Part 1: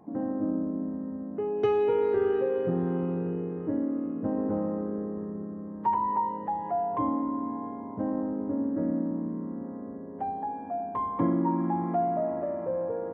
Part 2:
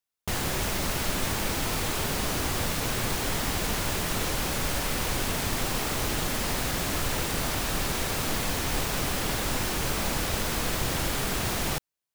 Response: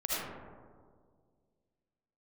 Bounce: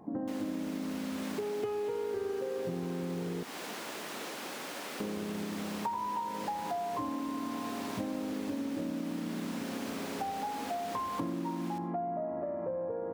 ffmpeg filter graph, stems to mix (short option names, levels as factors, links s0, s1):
-filter_complex "[0:a]volume=1.26,asplit=3[s0][s1][s2];[s0]atrim=end=3.43,asetpts=PTS-STARTPTS,afade=t=out:st=3.426:d=0.004:c=hsin[s3];[s1]atrim=start=3.43:end=5,asetpts=PTS-STARTPTS,volume=0[s4];[s2]atrim=start=5,asetpts=PTS-STARTPTS,afade=t=in:d=0.004:c=hsin[s5];[s3][s4][s5]concat=n=3:v=0:a=1[s6];[1:a]highpass=f=230:w=0.5412,highpass=f=230:w=1.3066,highshelf=f=6000:g=-7.5,volume=0.316,asplit=2[s7][s8];[s8]volume=0.119[s9];[2:a]atrim=start_sample=2205[s10];[s9][s10]afir=irnorm=-1:irlink=0[s11];[s6][s7][s11]amix=inputs=3:normalize=0,acompressor=threshold=0.0224:ratio=6"